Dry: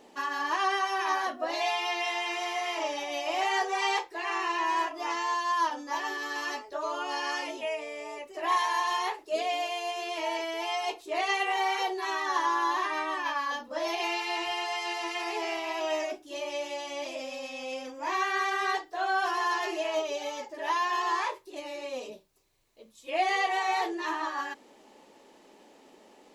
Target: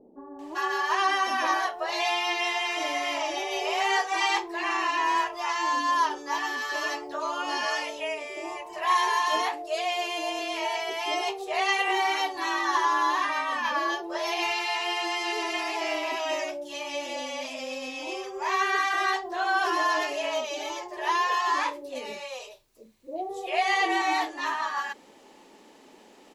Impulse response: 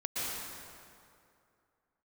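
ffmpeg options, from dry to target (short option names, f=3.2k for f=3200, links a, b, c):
-filter_complex "[0:a]acrossover=split=570[a][b];[b]adelay=390[c];[a][c]amix=inputs=2:normalize=0,volume=4dB"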